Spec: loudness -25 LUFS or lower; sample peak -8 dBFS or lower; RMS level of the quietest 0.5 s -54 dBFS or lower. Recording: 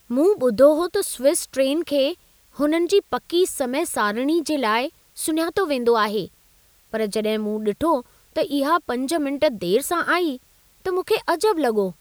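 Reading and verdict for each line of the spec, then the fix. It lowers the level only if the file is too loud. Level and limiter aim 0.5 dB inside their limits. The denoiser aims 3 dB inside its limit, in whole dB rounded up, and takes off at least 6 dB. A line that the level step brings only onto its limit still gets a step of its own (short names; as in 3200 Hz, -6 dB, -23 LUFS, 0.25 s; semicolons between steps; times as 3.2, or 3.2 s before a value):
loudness -21.5 LUFS: fail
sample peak -4.0 dBFS: fail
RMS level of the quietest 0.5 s -57 dBFS: OK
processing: gain -4 dB; limiter -8.5 dBFS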